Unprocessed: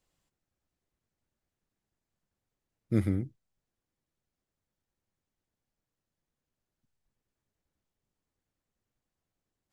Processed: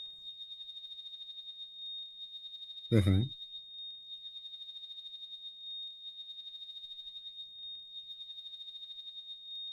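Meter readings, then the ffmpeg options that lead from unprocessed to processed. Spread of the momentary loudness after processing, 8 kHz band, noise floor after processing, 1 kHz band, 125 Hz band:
12 LU, no reading, -52 dBFS, +2.0 dB, +2.5 dB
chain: -af "aeval=exprs='val(0)+0.00447*sin(2*PI*3700*n/s)':c=same,aphaser=in_gain=1:out_gain=1:delay=4.6:decay=0.52:speed=0.26:type=sinusoidal,volume=1.19"

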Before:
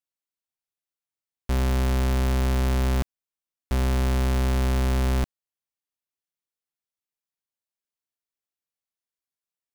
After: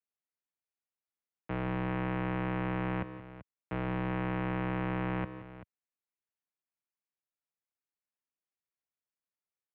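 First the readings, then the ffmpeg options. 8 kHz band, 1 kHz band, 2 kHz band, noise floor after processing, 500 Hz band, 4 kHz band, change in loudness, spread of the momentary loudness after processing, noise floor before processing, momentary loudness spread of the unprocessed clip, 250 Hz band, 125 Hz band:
under -40 dB, -3.5 dB, -3.5 dB, under -85 dBFS, -6.5 dB, -15.0 dB, -9.5 dB, 15 LU, under -85 dBFS, 6 LU, -4.5 dB, -11.0 dB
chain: -af "highpass=f=160:t=q:w=0.5412,highpass=f=160:t=q:w=1.307,lowpass=f=2700:t=q:w=0.5176,lowpass=f=2700:t=q:w=0.7071,lowpass=f=2700:t=q:w=1.932,afreqshift=-76,aecho=1:1:153|175|386:0.119|0.178|0.188,volume=0.631"

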